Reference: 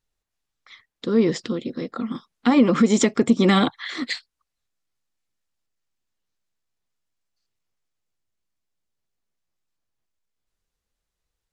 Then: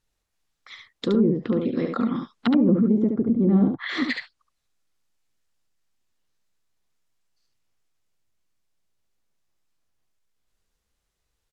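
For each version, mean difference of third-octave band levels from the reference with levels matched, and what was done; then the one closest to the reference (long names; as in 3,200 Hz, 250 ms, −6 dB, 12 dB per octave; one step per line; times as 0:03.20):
8.0 dB: treble cut that deepens with the level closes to 340 Hz, closed at −18 dBFS
brickwall limiter −17 dBFS, peak gain reduction 9 dB
single-tap delay 71 ms −5 dB
level +3.5 dB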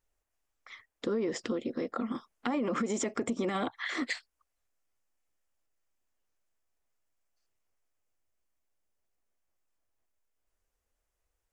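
4.5 dB: graphic EQ with 15 bands 160 Hz −11 dB, 630 Hz +4 dB, 4,000 Hz −9 dB
brickwall limiter −17 dBFS, peak gain reduction 10.5 dB
downward compressor 2.5 to 1, threshold −31 dBFS, peak gain reduction 7.5 dB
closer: second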